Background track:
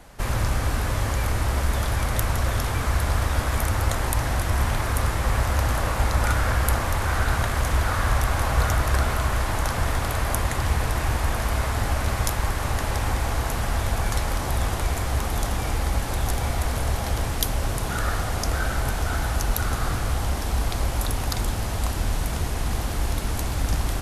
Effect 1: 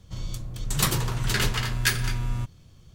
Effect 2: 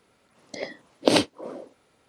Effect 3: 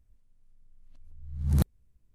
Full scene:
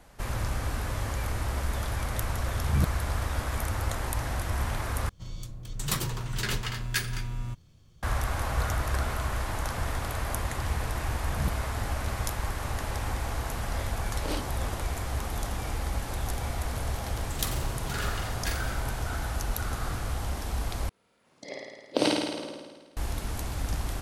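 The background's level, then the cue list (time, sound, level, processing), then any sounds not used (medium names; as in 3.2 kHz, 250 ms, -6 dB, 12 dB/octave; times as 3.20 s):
background track -7 dB
1.22 s: add 3 -1 dB
5.09 s: replace with 1 -6 dB
9.86 s: add 3 -7.5 dB
13.18 s: add 2 -9.5 dB + peak limiter -14 dBFS
16.60 s: add 1 -13 dB + flutter echo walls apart 7.5 m, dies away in 0.6 s
20.89 s: replace with 2 -8 dB + flutter echo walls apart 9.2 m, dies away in 1.4 s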